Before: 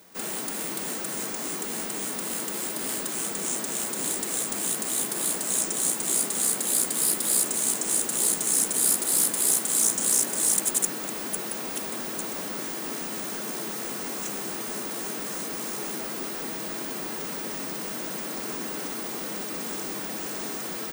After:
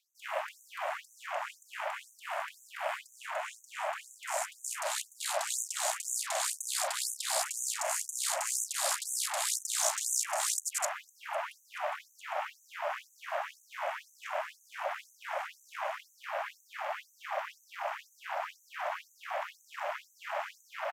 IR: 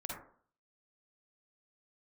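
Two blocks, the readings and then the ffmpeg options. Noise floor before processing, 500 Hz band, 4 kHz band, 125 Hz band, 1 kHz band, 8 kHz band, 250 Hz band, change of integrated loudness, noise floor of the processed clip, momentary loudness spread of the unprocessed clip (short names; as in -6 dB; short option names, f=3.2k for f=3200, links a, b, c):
-34 dBFS, -3.0 dB, -5.0 dB, under -40 dB, +2.5 dB, -10.5 dB, under -40 dB, -9.5 dB, -65 dBFS, 10 LU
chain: -filter_complex "[0:a]acrossover=split=9900[a][b];[b]acompressor=threshold=-35dB:ratio=4:attack=1:release=60[c];[a][c]amix=inputs=2:normalize=0,aresample=32000,aresample=44100,acrossover=split=170[d][e];[e]acontrast=46[f];[d][f]amix=inputs=2:normalize=0,equalizer=f=9.7k:w=1:g=-11.5,asplit=2[g][h];[1:a]atrim=start_sample=2205,adelay=37[i];[h][i]afir=irnorm=-1:irlink=0,volume=-17.5dB[j];[g][j]amix=inputs=2:normalize=0,aeval=exprs='val(0)*sin(2*PI*210*n/s)':c=same,afwtdn=0.0126,equalizer=f=510:w=0.69:g=9.5,afftfilt=real='re*gte(b*sr/1024,550*pow(6000/550,0.5+0.5*sin(2*PI*2*pts/sr)))':imag='im*gte(b*sr/1024,550*pow(6000/550,0.5+0.5*sin(2*PI*2*pts/sr)))':win_size=1024:overlap=0.75,volume=-1dB"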